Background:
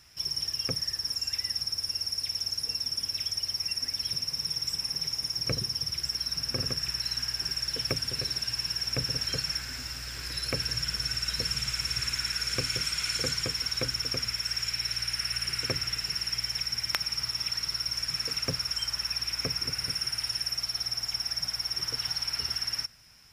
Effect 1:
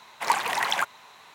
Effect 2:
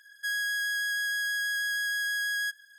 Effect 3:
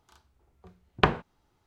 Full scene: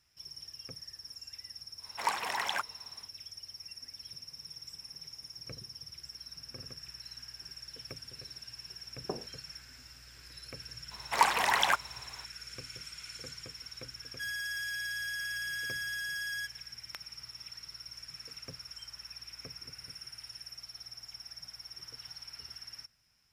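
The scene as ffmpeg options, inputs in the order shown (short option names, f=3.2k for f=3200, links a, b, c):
-filter_complex "[1:a]asplit=2[a][b];[0:a]volume=-15.5dB[c];[3:a]asuperpass=centerf=380:order=4:qfactor=0.85[d];[a]atrim=end=1.34,asetpts=PTS-STARTPTS,volume=-8dB,afade=t=in:d=0.1,afade=t=out:st=1.24:d=0.1,adelay=1770[e];[d]atrim=end=1.66,asetpts=PTS-STARTPTS,volume=-11dB,afade=t=in:d=0.004:c=hsin,afade=t=out:st=1.656:d=0.004:c=hsin,adelay=8060[f];[b]atrim=end=1.34,asetpts=PTS-STARTPTS,volume=-1.5dB,afade=t=in:d=0.004:c=hsin,afade=t=out:st=1.336:d=0.004:c=hsin,adelay=10910[g];[2:a]atrim=end=2.78,asetpts=PTS-STARTPTS,volume=-7.5dB,afade=t=in:d=0.004:c=hsin,afade=t=out:st=2.776:d=0.004:c=hsin,adelay=615636S[h];[c][e][f][g][h]amix=inputs=5:normalize=0"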